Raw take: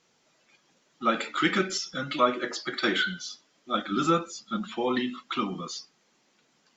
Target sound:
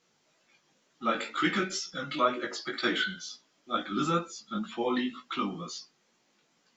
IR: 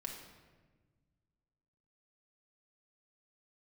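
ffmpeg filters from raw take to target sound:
-af "flanger=delay=16.5:depth=3.5:speed=2.1"

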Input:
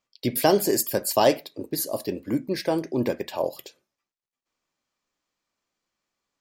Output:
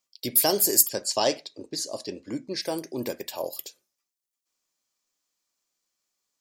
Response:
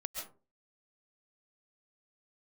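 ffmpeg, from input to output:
-filter_complex "[0:a]asplit=3[s0][s1][s2];[s0]afade=t=out:st=0.87:d=0.02[s3];[s1]lowpass=f=6800:w=0.5412,lowpass=f=6800:w=1.3066,afade=t=in:st=0.87:d=0.02,afade=t=out:st=2.61:d=0.02[s4];[s2]afade=t=in:st=2.61:d=0.02[s5];[s3][s4][s5]amix=inputs=3:normalize=0,bass=f=250:g=-4,treble=f=4000:g=14,volume=0.531"

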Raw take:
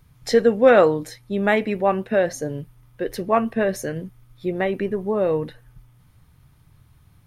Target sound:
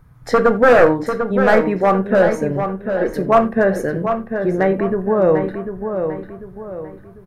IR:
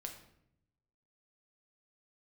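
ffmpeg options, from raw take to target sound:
-filter_complex "[0:a]aeval=exprs='0.266*(abs(mod(val(0)/0.266+3,4)-2)-1)':c=same,highshelf=f=2100:t=q:w=1.5:g=-10,asplit=2[s0][s1];[s1]adelay=746,lowpass=f=3600:p=1,volume=0.447,asplit=2[s2][s3];[s3]adelay=746,lowpass=f=3600:p=1,volume=0.39,asplit=2[s4][s5];[s5]adelay=746,lowpass=f=3600:p=1,volume=0.39,asplit=2[s6][s7];[s7]adelay=746,lowpass=f=3600:p=1,volume=0.39,asplit=2[s8][s9];[s9]adelay=746,lowpass=f=3600:p=1,volume=0.39[s10];[s0][s2][s4][s6][s8][s10]amix=inputs=6:normalize=0,asplit=2[s11][s12];[1:a]atrim=start_sample=2205,atrim=end_sample=4410[s13];[s12][s13]afir=irnorm=-1:irlink=0,volume=1.58[s14];[s11][s14]amix=inputs=2:normalize=0"

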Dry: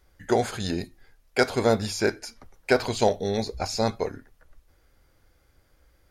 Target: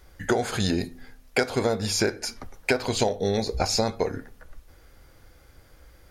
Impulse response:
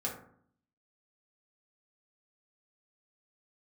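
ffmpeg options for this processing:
-filter_complex "[0:a]acompressor=threshold=0.0355:ratio=12,asplit=2[s0][s1];[1:a]atrim=start_sample=2205[s2];[s1][s2]afir=irnorm=-1:irlink=0,volume=0.106[s3];[s0][s3]amix=inputs=2:normalize=0,volume=2.66"

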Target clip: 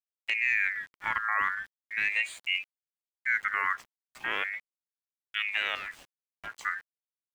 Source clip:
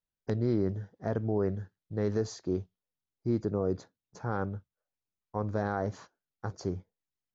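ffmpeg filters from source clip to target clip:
-filter_complex "[0:a]asettb=1/sr,asplit=3[s0][s1][s2];[s0]atrim=end=5.754[s3];[s1]atrim=start=5.75:end=6.53,asetpts=PTS-STARTPTS,afade=t=in:d=0.004:c=qsin,afade=t=out:st=0.776:d=0.004:c=qsin,aeval=exprs='(tanh(63.1*val(0)+0.4)-tanh(0.4))/63.1':c=same[s4];[s2]atrim=start=6.526[s5];[s3][s4]acrossfade=d=0.004:c1=hsin:c2=qsin[s6];[s6][s5]acrossfade=d=0.004:c1=qsin:c2=hsin,aeval=exprs='val(0)*gte(abs(val(0)),0.00299)':c=same,aeval=exprs='val(0)*sin(2*PI*2000*n/s+2000*0.25/0.39*sin(2*PI*0.39*n/s))':c=same,volume=1.5"

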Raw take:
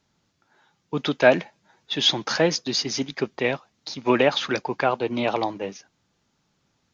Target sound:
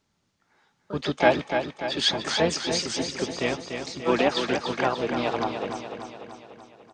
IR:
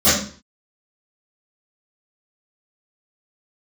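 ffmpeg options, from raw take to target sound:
-filter_complex "[0:a]asplit=3[s0][s1][s2];[s1]asetrate=22050,aresample=44100,atempo=2,volume=0.282[s3];[s2]asetrate=58866,aresample=44100,atempo=0.749154,volume=0.501[s4];[s0][s3][s4]amix=inputs=3:normalize=0,aecho=1:1:293|586|879|1172|1465|1758|2051:0.447|0.255|0.145|0.0827|0.0472|0.0269|0.0153,volume=0.596"

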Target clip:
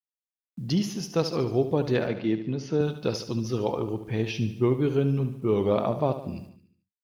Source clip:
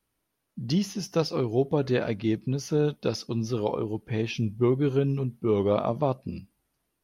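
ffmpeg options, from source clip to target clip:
-filter_complex "[0:a]agate=range=0.0224:threshold=0.00631:ratio=3:detection=peak,acrusher=bits=10:mix=0:aa=0.000001,asettb=1/sr,asplit=3[s0][s1][s2];[s0]atrim=end=2.074[s3];[s1]atrim=start=2.07:end=2.81,asetpts=PTS-STARTPTS,afade=t=in:d=0.004:c=qsin,afade=t=out:st=0.736:d=0.004:c=qsin,highpass=140,lowpass=4000[s4];[s2]atrim=start=2.806[s5];[s3][s4]acrossfade=d=0.004:c1=hsin:c2=qsin[s6];[s6][s5]acrossfade=d=0.004:c1=qsin:c2=hsin,aecho=1:1:73|146|219|292|365|438:0.282|0.149|0.0792|0.042|0.0222|0.0118"

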